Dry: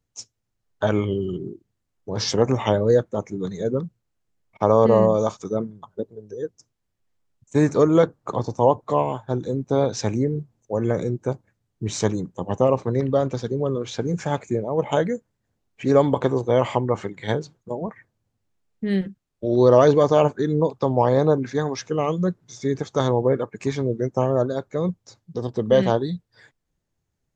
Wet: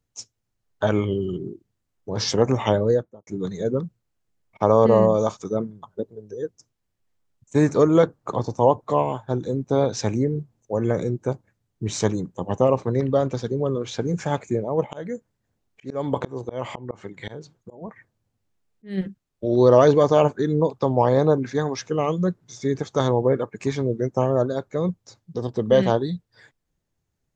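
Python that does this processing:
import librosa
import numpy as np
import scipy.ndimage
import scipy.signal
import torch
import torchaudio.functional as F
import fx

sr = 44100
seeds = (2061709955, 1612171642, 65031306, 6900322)

y = fx.studio_fade_out(x, sr, start_s=2.76, length_s=0.51)
y = fx.auto_swell(y, sr, attack_ms=317.0, at=(14.85, 18.97), fade=0.02)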